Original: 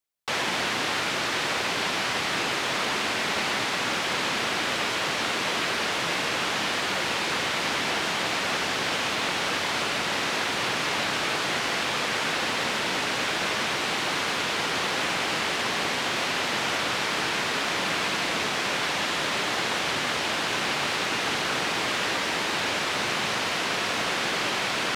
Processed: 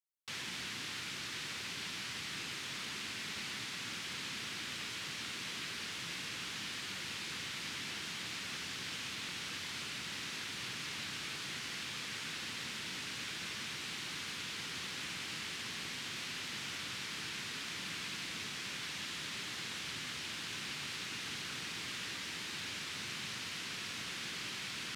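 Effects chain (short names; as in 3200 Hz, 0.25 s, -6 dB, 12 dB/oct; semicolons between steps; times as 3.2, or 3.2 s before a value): HPF 70 Hz; passive tone stack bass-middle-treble 6-0-2; gain +3.5 dB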